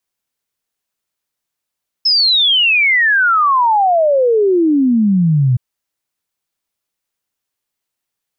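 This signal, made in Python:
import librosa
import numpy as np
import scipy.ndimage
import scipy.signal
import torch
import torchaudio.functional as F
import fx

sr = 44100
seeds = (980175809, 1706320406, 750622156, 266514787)

y = fx.ess(sr, length_s=3.52, from_hz=5300.0, to_hz=120.0, level_db=-9.0)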